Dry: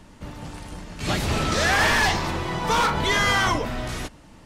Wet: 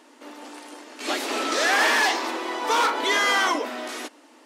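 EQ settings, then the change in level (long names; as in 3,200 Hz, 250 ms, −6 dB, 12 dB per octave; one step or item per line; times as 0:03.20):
linear-phase brick-wall high-pass 240 Hz
0.0 dB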